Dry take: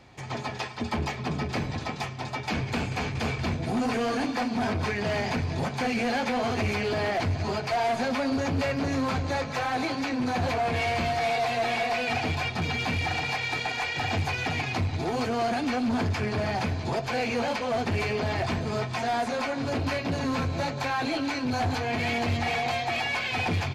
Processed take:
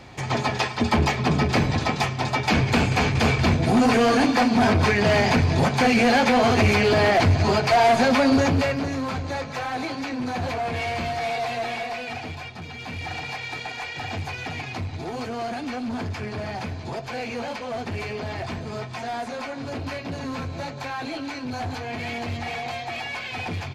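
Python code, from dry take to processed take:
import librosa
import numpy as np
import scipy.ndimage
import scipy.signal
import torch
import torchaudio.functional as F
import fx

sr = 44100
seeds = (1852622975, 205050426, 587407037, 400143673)

y = fx.gain(x, sr, db=fx.line((8.39, 9.0), (8.95, -0.5), (11.52, -0.5), (12.7, -9.0), (13.12, -3.0)))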